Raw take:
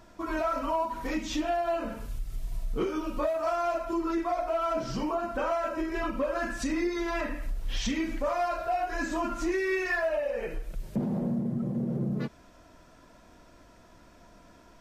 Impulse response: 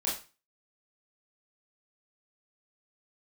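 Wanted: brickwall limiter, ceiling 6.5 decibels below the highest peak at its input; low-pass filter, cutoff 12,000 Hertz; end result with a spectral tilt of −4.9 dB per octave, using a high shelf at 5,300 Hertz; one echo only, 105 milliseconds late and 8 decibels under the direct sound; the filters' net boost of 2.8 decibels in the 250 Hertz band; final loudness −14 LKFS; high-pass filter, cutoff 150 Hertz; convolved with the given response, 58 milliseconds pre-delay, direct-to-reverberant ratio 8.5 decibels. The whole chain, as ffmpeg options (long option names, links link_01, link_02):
-filter_complex "[0:a]highpass=150,lowpass=12000,equalizer=frequency=250:width_type=o:gain=4.5,highshelf=frequency=5300:gain=-6.5,alimiter=limit=-23.5dB:level=0:latency=1,aecho=1:1:105:0.398,asplit=2[link_01][link_02];[1:a]atrim=start_sample=2205,adelay=58[link_03];[link_02][link_03]afir=irnorm=-1:irlink=0,volume=-14dB[link_04];[link_01][link_04]amix=inputs=2:normalize=0,volume=16.5dB"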